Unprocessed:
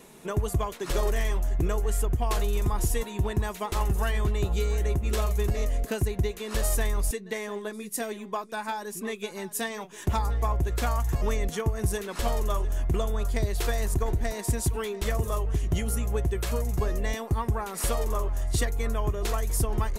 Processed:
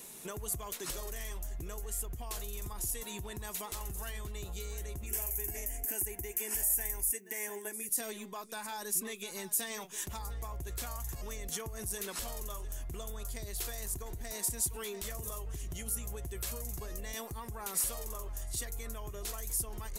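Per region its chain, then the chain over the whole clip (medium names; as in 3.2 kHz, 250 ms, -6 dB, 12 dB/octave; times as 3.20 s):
5.06–7.89 s: high-pass 62 Hz 6 dB/octave + treble shelf 8.6 kHz +11.5 dB + static phaser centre 800 Hz, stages 8
whole clip: compression, threshold -28 dBFS; peak limiter -28 dBFS; pre-emphasis filter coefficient 0.8; trim +7.5 dB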